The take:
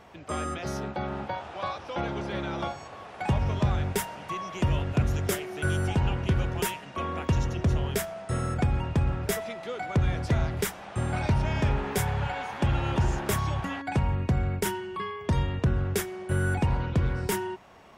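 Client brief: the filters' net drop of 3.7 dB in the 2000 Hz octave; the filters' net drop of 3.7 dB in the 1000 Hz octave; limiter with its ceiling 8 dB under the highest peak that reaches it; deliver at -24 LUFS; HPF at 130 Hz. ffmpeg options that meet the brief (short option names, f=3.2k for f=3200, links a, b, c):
-af "highpass=130,equalizer=f=1k:t=o:g=-4,equalizer=f=2k:t=o:g=-3.5,volume=10.5dB,alimiter=limit=-13dB:level=0:latency=1"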